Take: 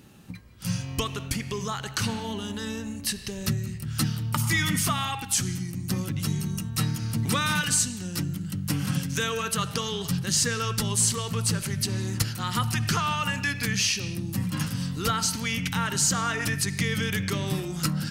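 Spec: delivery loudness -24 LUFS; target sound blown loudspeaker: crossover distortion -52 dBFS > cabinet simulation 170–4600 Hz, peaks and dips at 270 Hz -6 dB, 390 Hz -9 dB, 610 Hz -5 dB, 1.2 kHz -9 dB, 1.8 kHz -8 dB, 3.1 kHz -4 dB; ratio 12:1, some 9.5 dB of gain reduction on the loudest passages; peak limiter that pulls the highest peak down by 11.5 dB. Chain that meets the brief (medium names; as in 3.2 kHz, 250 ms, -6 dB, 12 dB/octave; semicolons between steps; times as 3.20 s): compression 12:1, threshold -29 dBFS; peak limiter -25 dBFS; crossover distortion -52 dBFS; cabinet simulation 170–4600 Hz, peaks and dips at 270 Hz -6 dB, 390 Hz -9 dB, 610 Hz -5 dB, 1.2 kHz -9 dB, 1.8 kHz -8 dB, 3.1 kHz -4 dB; trim +17 dB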